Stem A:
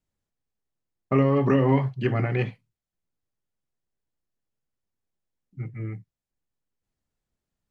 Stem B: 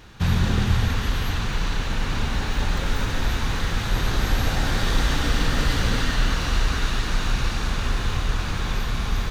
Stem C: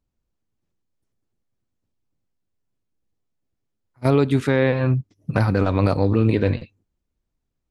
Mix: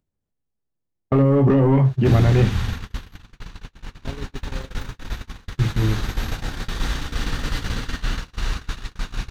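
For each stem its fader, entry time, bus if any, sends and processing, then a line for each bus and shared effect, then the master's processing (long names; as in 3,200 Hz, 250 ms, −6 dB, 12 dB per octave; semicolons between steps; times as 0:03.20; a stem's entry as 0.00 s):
−0.5 dB, 0.00 s, no send, leveller curve on the samples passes 2; tilt shelving filter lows +6 dB; brickwall limiter −9.5 dBFS, peak gain reduction 4.5 dB
−2.5 dB, 1.85 s, no send, parametric band 610 Hz −3 dB 0.77 octaves
−13.5 dB, 0.00 s, no send, running median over 41 samples; automatic ducking −17 dB, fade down 1.00 s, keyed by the first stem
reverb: not used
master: noise gate −22 dBFS, range −54 dB; upward compression, threshold −38 dBFS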